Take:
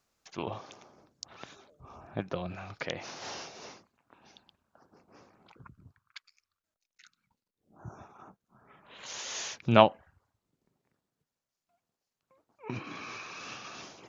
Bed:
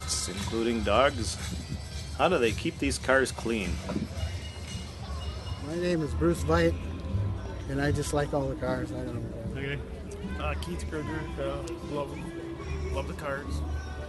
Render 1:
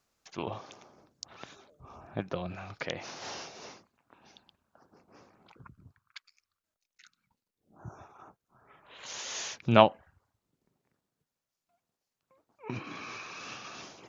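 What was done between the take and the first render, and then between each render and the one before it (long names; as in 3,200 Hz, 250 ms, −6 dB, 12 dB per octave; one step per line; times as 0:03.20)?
0:07.90–0:09.05: parametric band 200 Hz −8.5 dB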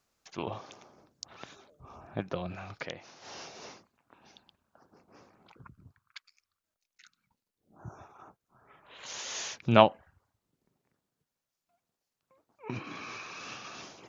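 0:02.74–0:03.50: duck −10.5 dB, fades 0.28 s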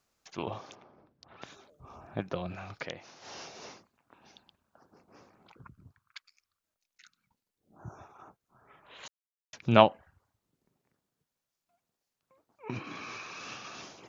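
0:00.75–0:01.42: high-frequency loss of the air 320 metres
0:09.08–0:09.53: silence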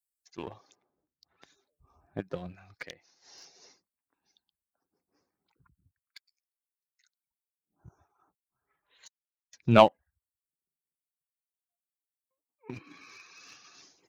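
spectral dynamics exaggerated over time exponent 1.5
leveller curve on the samples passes 1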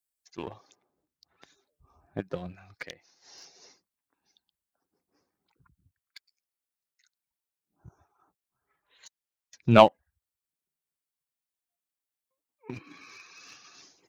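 level +2 dB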